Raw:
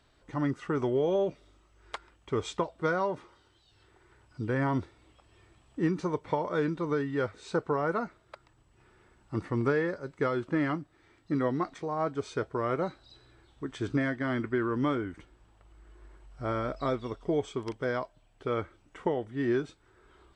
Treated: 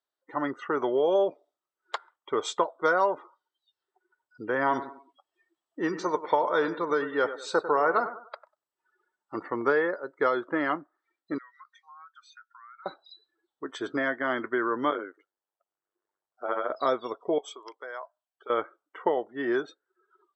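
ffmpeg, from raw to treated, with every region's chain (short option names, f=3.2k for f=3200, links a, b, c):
-filter_complex "[0:a]asettb=1/sr,asplit=3[a][b][c];[a]atrim=end=4.614[d];[b]atrim=start=4.61:end=9.35,asetpts=PTS-STARTPTS,afade=t=in:d=0.004:c=qsin,afade=t=out:st=4.736:d=0.004:c=qsin,highshelf=f=2k:g=3,aecho=1:1:97|194|291|388:0.251|0.1|0.0402|0.0161,atrim=end_sample=209034[e];[c]atrim=start=9.346[f];[d][e]acrossfade=d=0.004:c1=hsin:c2=qsin[g];[g][f]acrossfade=d=0.004:c1=qsin:c2=hsin,asettb=1/sr,asplit=3[h][i][j];[h]atrim=end=11.384[k];[i]atrim=start=11.38:end=12.86,asetpts=PTS-STARTPTS,afade=t=in:d=0.004:c=qsin,afade=t=out:st=1.476:d=0.004:c=qsin,highpass=f=1.4k:w=0.5412,highpass=f=1.4k:w=1.3066,acompressor=threshold=-54dB:ratio=4:attack=3.2:release=140:knee=1:detection=peak[l];[j]atrim=start=12.856[m];[k][l]acrossfade=d=0.004:c1=hsin:c2=qsin[n];[n][m]acrossfade=d=0.004:c1=qsin:c2=hsin,asettb=1/sr,asplit=3[o][p][q];[o]atrim=end=14.904[r];[p]atrim=start=14.9:end=16.7,asetpts=PTS-STARTPTS,afade=t=in:d=0.004:c=qsin,afade=t=out:st=1.796:d=0.004:c=qsin,lowshelf=f=290:t=q:w=1.5:g=-7.5,tremolo=f=100:d=0.889[s];[q]atrim=start=16.696[t];[r][s]acrossfade=d=0.004:c1=hsin:c2=qsin[u];[u][t]acrossfade=d=0.004:c1=qsin:c2=hsin,asettb=1/sr,asplit=3[v][w][x];[v]atrim=end=17.384[y];[w]atrim=start=17.38:end=18.5,asetpts=PTS-STARTPTS,afade=t=in:d=0.004:c=qsin,afade=t=out:st=1.116:d=0.004:c=qsin,acompressor=threshold=-35dB:ratio=5:attack=3.2:release=140:knee=1:detection=peak,highpass=f=890:p=1[z];[x]atrim=start=18.496[aa];[y][z]acrossfade=d=0.004:c1=hsin:c2=qsin[ab];[ab][aa]acrossfade=d=0.004:c1=qsin:c2=hsin,highpass=500,afftdn=nr=30:nf=-52,equalizer=f=2.4k:t=o:w=0.45:g=-9,volume=7.5dB"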